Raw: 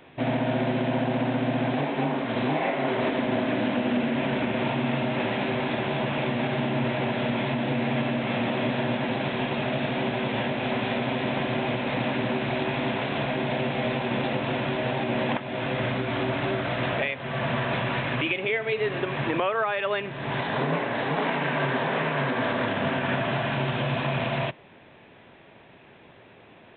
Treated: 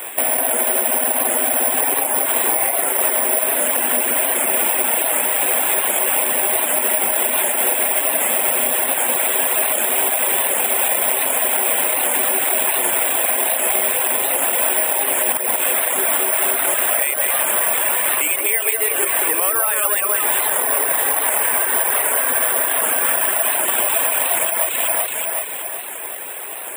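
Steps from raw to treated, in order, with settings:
Bessel high-pass filter 580 Hz, order 4
on a send: delay that swaps between a low-pass and a high-pass 188 ms, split 2,300 Hz, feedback 69%, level −4 dB
on the sum: reverb reduction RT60 0.59 s
downward compressor 10 to 1, threshold −39 dBFS, peak gain reduction 16.5 dB
bad sample-rate conversion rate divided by 4×, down filtered, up zero stuff
boost into a limiter +20 dB
wow of a warped record 78 rpm, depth 100 cents
level −1 dB

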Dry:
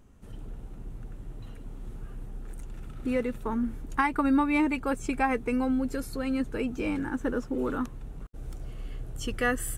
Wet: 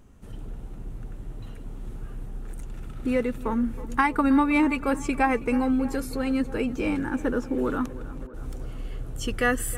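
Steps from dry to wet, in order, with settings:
tape delay 320 ms, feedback 74%, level −16 dB, low-pass 2,300 Hz
level +3.5 dB

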